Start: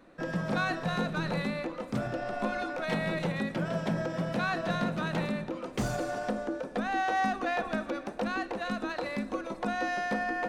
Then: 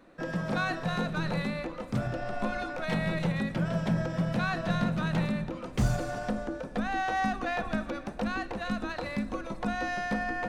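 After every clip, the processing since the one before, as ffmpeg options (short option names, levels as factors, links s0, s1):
-af "asubboost=boost=4:cutoff=160"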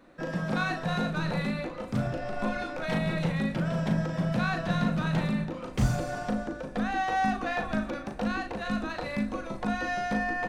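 -filter_complex "[0:a]asplit=2[s0][s1];[s1]adelay=38,volume=0.501[s2];[s0][s2]amix=inputs=2:normalize=0"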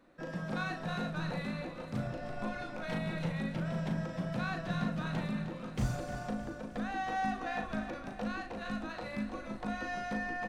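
-af "aecho=1:1:309|618|927|1236|1545|1854:0.266|0.146|0.0805|0.0443|0.0243|0.0134,volume=0.422"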